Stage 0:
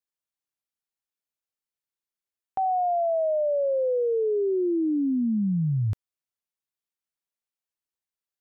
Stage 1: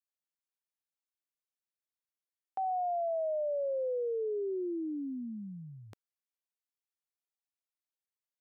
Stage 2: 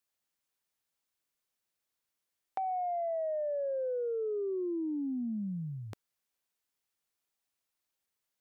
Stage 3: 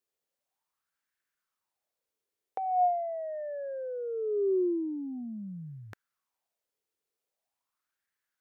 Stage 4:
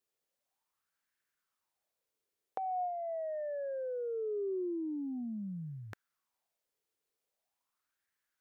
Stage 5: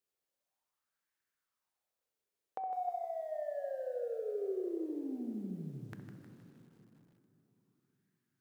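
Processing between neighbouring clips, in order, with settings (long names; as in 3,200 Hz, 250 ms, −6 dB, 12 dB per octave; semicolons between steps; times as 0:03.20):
high-pass filter 340 Hz 12 dB per octave; level −8 dB
downward compressor, threshold −41 dBFS, peak gain reduction 9 dB; soft clipping −31.5 dBFS, distortion −33 dB; level +8.5 dB
auto-filter bell 0.43 Hz 410–1,700 Hz +15 dB; level −4 dB
downward compressor 5 to 1, threshold −35 dBFS, peak gain reduction 11.5 dB
delay with a low-pass on its return 64 ms, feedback 31%, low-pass 1,200 Hz, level −8.5 dB; convolution reverb RT60 4.2 s, pre-delay 3 ms, DRR 7.5 dB; feedback echo at a low word length 156 ms, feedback 55%, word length 10 bits, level −9.5 dB; level −3.5 dB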